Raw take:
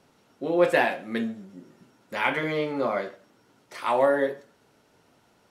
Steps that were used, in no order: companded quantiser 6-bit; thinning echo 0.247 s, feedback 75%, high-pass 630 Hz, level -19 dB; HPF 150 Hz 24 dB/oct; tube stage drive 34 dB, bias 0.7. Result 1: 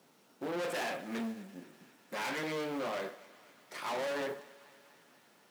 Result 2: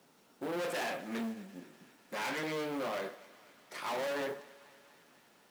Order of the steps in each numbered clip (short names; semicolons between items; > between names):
tube stage > thinning echo > companded quantiser > HPF; tube stage > HPF > companded quantiser > thinning echo